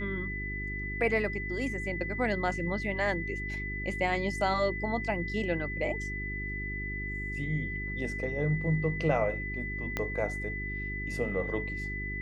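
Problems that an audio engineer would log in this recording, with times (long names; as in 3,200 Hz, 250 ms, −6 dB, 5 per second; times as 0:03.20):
mains hum 50 Hz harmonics 8 −38 dBFS
whistle 2,000 Hz −36 dBFS
0:09.97: click −16 dBFS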